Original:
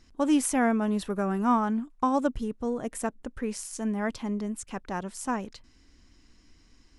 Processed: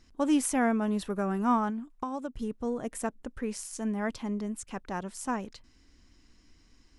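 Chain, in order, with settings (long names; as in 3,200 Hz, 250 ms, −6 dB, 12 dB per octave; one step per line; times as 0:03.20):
0:01.69–0:02.39: downward compressor 6 to 1, threshold −30 dBFS, peak gain reduction 10.5 dB
level −2 dB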